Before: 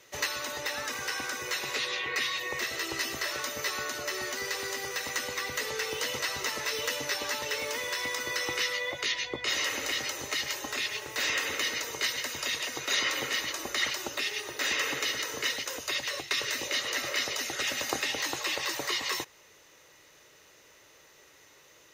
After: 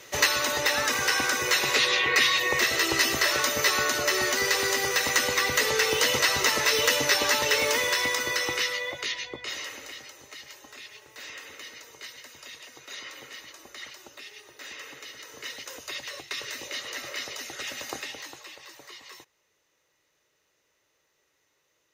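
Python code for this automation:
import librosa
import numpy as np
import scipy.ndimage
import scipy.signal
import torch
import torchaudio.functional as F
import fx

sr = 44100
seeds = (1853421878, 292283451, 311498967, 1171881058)

y = fx.gain(x, sr, db=fx.line((7.73, 9.0), (9.29, -2.5), (10.12, -12.5), (15.12, -12.5), (15.7, -4.5), (17.97, -4.5), (18.57, -15.0)))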